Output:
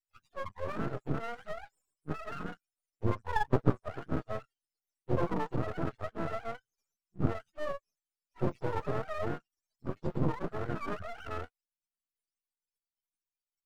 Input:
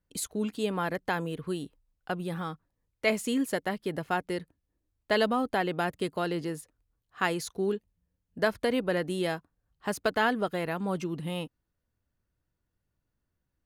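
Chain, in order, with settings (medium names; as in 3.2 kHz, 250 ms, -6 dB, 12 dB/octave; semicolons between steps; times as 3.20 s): spectrum inverted on a logarithmic axis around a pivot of 480 Hz; 3.30–3.85 s: transient shaper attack +12 dB, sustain -1 dB; spectral noise reduction 28 dB; half-wave rectifier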